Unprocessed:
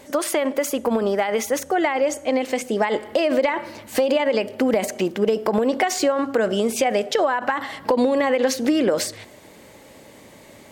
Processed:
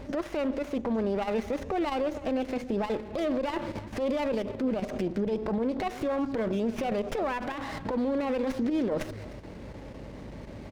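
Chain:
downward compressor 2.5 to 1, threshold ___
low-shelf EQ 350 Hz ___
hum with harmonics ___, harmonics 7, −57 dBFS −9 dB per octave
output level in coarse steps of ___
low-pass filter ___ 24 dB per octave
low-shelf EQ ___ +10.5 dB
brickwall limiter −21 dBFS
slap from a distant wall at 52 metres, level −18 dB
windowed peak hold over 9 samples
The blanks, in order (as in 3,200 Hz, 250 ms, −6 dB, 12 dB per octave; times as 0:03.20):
−24 dBFS, +6 dB, 50 Hz, 9 dB, 5,400 Hz, 150 Hz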